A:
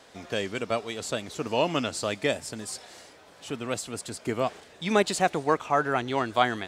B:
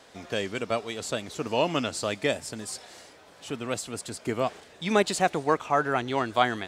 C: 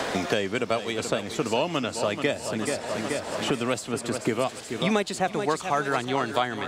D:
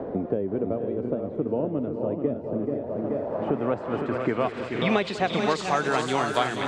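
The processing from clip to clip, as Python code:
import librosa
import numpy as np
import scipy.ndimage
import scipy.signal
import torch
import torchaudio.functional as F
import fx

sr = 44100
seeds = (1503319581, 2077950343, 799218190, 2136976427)

y1 = x
y2 = fx.echo_feedback(y1, sr, ms=431, feedback_pct=47, wet_db=-11.5)
y2 = fx.band_squash(y2, sr, depth_pct=100)
y3 = fx.echo_multitap(y2, sr, ms=(198, 200, 480, 513), db=(-17.0, -17.5, -9.5, -7.5))
y3 = fx.filter_sweep_lowpass(y3, sr, from_hz=430.0, to_hz=9600.0, start_s=2.8, end_s=6.24, q=1.1)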